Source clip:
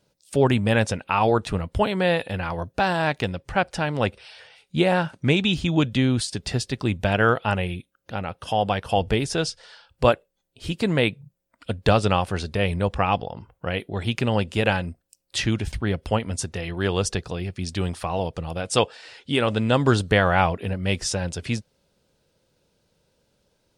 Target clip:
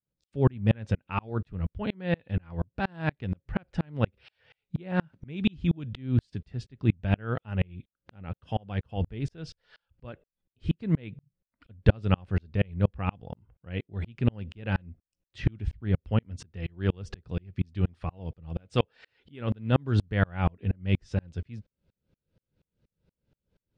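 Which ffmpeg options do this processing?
ffmpeg -i in.wav -af "lowpass=1800,equalizer=frequency=810:width_type=o:width=2.6:gain=-15,aeval=exprs='val(0)*pow(10,-37*if(lt(mod(-4.2*n/s,1),2*abs(-4.2)/1000),1-mod(-4.2*n/s,1)/(2*abs(-4.2)/1000),(mod(-4.2*n/s,1)-2*abs(-4.2)/1000)/(1-2*abs(-4.2)/1000))/20)':channel_layout=same,volume=8.5dB" out.wav

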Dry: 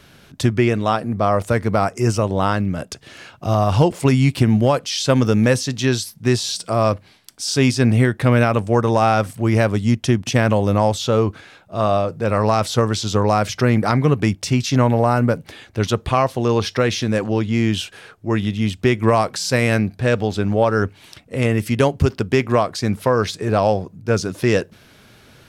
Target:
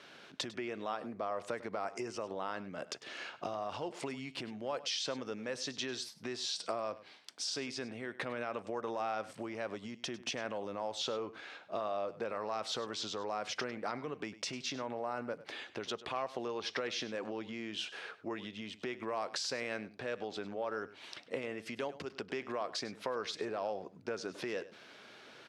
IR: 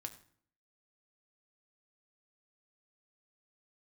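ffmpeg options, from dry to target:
-af "alimiter=limit=-12.5dB:level=0:latency=1:release=124,acompressor=threshold=-27dB:ratio=10,highpass=360,lowpass=5200,aecho=1:1:100:0.15,volume=-4dB"

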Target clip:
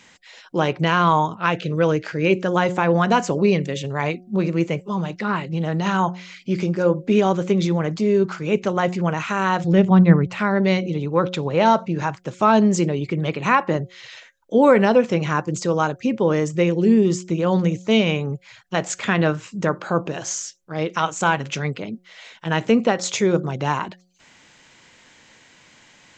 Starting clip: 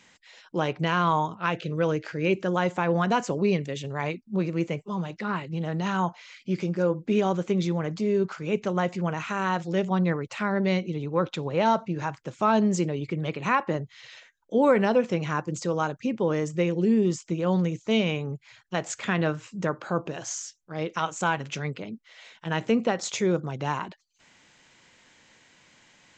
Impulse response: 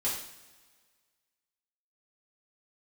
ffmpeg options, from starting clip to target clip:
-filter_complex "[0:a]asettb=1/sr,asplit=3[link_01][link_02][link_03];[link_01]atrim=end=9.644[link_04];[link_02]atrim=start=9.64:end=10.39,asetpts=PTS-STARTPTS,afade=type=in:duration=0.004:curve=qsin,afade=type=out:start_time=0.746:duration=0.004:curve=qsin,bass=frequency=250:gain=10,treble=frequency=4000:gain=-8[link_05];[link_03]atrim=start=10.386[link_06];[link_04][link_05]acrossfade=duration=0.004:curve1=hsin:curve2=qsin[link_07];[link_07][link_06]acrossfade=duration=0.004:curve1=qsin:curve2=hsin,bandreject=frequency=181.4:width_type=h:width=4,bandreject=frequency=362.8:width_type=h:width=4,bandreject=frequency=544.2:width_type=h:width=4,bandreject=frequency=725.6:width_type=h:width=4,volume=6.5dB"

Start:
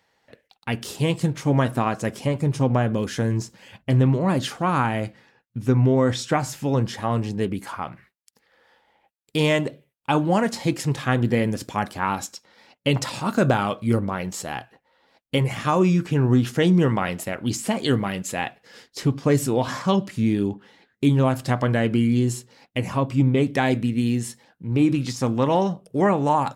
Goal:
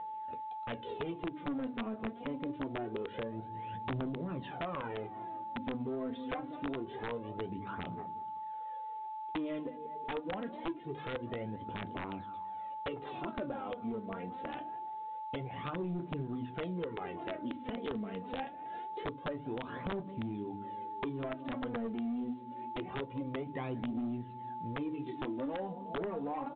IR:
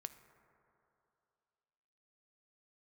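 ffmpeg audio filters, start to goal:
-filter_complex "[0:a]equalizer=frequency=360:width=0.54:gain=14,bandreject=frequency=50:width_type=h:width=6,bandreject=frequency=100:width_type=h:width=6,bandreject=frequency=150:width_type=h:width=6,bandreject=frequency=200:width_type=h:width=6,bandreject=frequency=250:width_type=h:width=6,bandreject=frequency=300:width_type=h:width=6,asplit=2[link_01][link_02];[link_02]adelay=188,lowpass=frequency=1400:poles=1,volume=-19dB,asplit=2[link_03][link_04];[link_04]adelay=188,lowpass=frequency=1400:poles=1,volume=0.51,asplit=2[link_05][link_06];[link_06]adelay=188,lowpass=frequency=1400:poles=1,volume=0.51,asplit=2[link_07][link_08];[link_08]adelay=188,lowpass=frequency=1400:poles=1,volume=0.51[link_09];[link_03][link_05][link_07][link_09]amix=inputs=4:normalize=0[link_10];[link_01][link_10]amix=inputs=2:normalize=0,dynaudnorm=framelen=970:gausssize=7:maxgain=5.5dB,aphaser=in_gain=1:out_gain=1:delay=4.7:decay=0.68:speed=0.25:type=triangular,asoftclip=type=tanh:threshold=-5.5dB,flanger=delay=10:depth=3.8:regen=-44:speed=0.78:shape=triangular,aeval=exprs='val(0)+0.0224*sin(2*PI*870*n/s)':channel_layout=same,acompressor=threshold=-31dB:ratio=5,aeval=exprs='(mod(15*val(0)+1,2)-1)/15':channel_layout=same,volume=-6dB" -ar 8000 -c:a pcm_mulaw

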